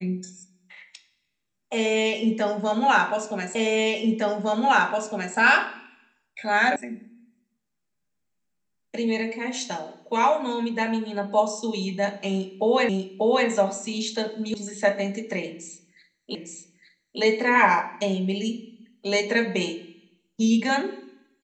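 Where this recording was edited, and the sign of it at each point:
3.55 repeat of the last 1.81 s
6.76 sound cut off
12.89 repeat of the last 0.59 s
14.54 sound cut off
16.35 repeat of the last 0.86 s

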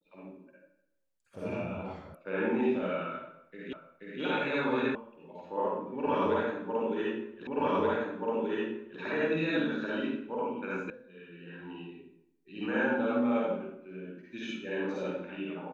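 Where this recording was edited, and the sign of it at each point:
2.15 sound cut off
3.73 repeat of the last 0.48 s
4.95 sound cut off
7.47 repeat of the last 1.53 s
10.9 sound cut off

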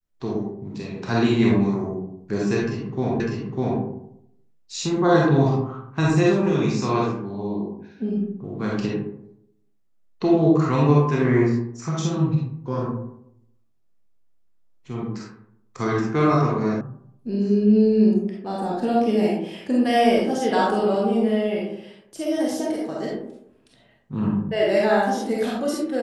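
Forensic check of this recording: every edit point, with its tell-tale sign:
3.2 repeat of the last 0.6 s
16.81 sound cut off

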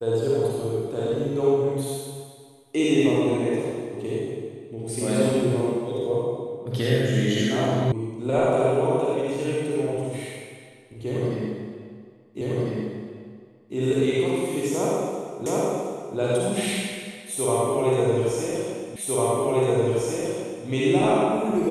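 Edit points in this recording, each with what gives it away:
7.92 sound cut off
12.41 repeat of the last 1.35 s
15.46 repeat of the last 0.72 s
18.96 repeat of the last 1.7 s

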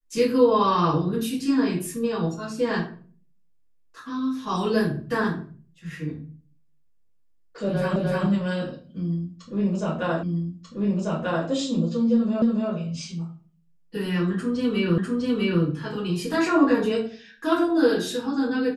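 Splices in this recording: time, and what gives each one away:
7.96 repeat of the last 0.3 s
10.23 repeat of the last 1.24 s
12.42 repeat of the last 0.28 s
14.98 repeat of the last 0.65 s

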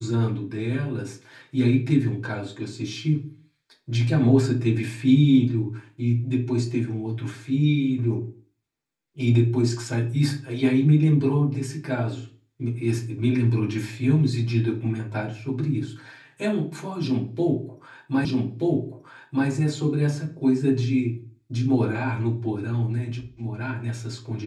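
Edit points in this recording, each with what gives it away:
18.25 repeat of the last 1.23 s

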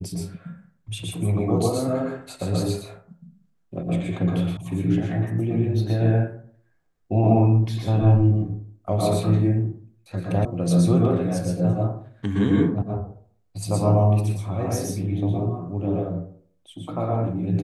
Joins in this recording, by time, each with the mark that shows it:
4.57 sound cut off
10.45 sound cut off

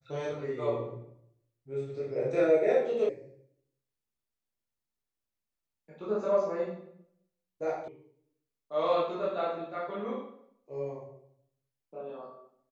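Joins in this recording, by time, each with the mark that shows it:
3.09 sound cut off
7.88 sound cut off

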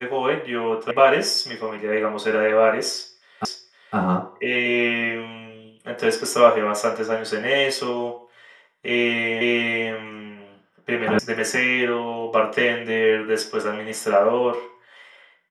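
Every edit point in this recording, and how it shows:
0.91 sound cut off
3.45 repeat of the last 0.51 s
9.41 repeat of the last 0.49 s
11.19 sound cut off

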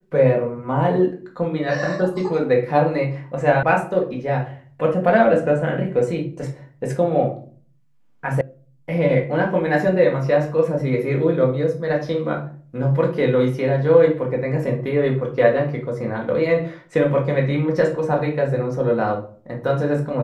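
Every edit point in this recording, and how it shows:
3.63 sound cut off
8.41 sound cut off

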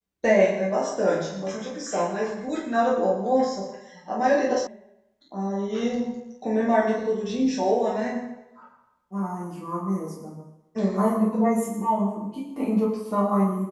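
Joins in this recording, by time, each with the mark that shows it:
4.67 sound cut off

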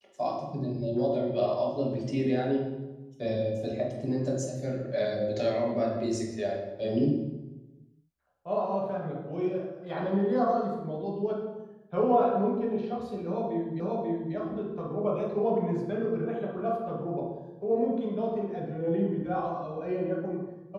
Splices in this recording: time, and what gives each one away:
13.8 repeat of the last 0.54 s

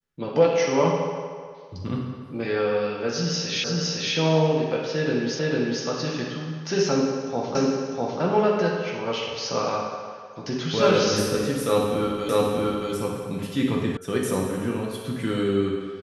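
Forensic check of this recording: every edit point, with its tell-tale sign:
3.64 repeat of the last 0.51 s
5.39 repeat of the last 0.45 s
7.55 repeat of the last 0.65 s
12.29 repeat of the last 0.63 s
13.97 sound cut off

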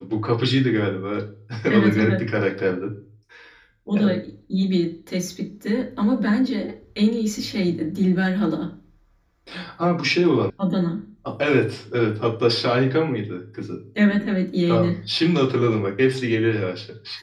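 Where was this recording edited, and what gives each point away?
10.5 sound cut off

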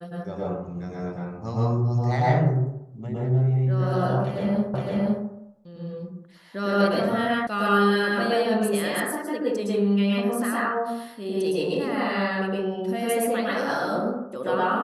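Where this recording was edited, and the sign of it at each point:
4.74 repeat of the last 0.51 s
7.47 sound cut off

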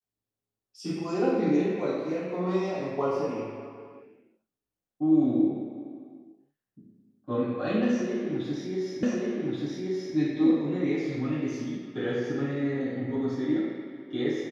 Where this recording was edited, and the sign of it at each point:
9.03 repeat of the last 1.13 s

